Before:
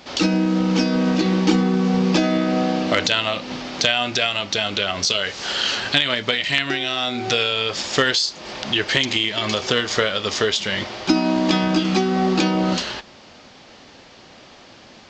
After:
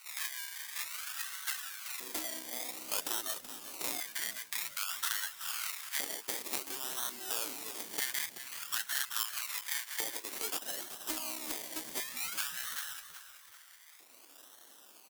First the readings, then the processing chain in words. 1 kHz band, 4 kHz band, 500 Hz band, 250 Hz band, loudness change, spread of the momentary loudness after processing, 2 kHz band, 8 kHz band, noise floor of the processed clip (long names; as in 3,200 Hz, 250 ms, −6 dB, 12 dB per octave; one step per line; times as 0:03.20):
−20.0 dB, −20.0 dB, −27.0 dB, −33.5 dB, −16.5 dB, 17 LU, −18.0 dB, −5.5 dB, −58 dBFS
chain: in parallel at +1 dB: downward compressor, threshold −35 dBFS, peak gain reduction 21 dB
on the sum: parametric band 170 Hz −15 dB 0.84 octaves
reverb reduction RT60 1.6 s
sample-and-hold swept by an LFO 26×, swing 60% 0.53 Hz
auto-filter high-pass square 0.25 Hz 280–1,500 Hz
asymmetric clip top −18 dBFS
first-order pre-emphasis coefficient 0.97
echo with shifted repeats 379 ms, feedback 43%, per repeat −71 Hz, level −12 dB
level −4 dB